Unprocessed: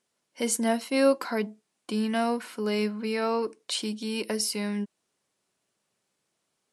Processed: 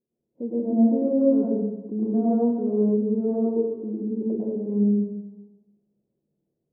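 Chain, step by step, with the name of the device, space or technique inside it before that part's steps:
next room (low-pass filter 450 Hz 24 dB per octave; convolution reverb RT60 1.1 s, pre-delay 96 ms, DRR −7.5 dB)
0:02.02–0:02.97: dynamic equaliser 1,000 Hz, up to +6 dB, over −42 dBFS, Q 0.84

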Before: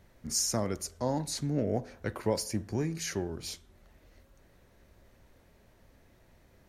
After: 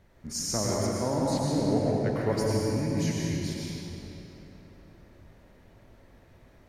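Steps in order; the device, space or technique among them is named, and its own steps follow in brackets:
0:02.32–0:03.43: inverse Chebyshev band-stop filter 530–1,100 Hz, stop band 50 dB
swimming-pool hall (convolution reverb RT60 3.5 s, pre-delay 93 ms, DRR −4.5 dB; high-shelf EQ 5,300 Hz −7 dB)

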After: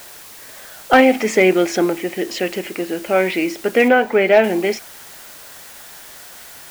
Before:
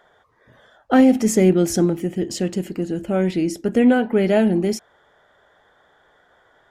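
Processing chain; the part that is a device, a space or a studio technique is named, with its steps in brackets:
drive-through speaker (band-pass filter 510–3,600 Hz; parametric band 2,300 Hz +9 dB 0.51 octaves; hard clipping −12 dBFS, distortion −24 dB; white noise bed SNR 21 dB)
0:03.88–0:04.44: parametric band 12,000 Hz −10 dB 2.4 octaves
level +9 dB

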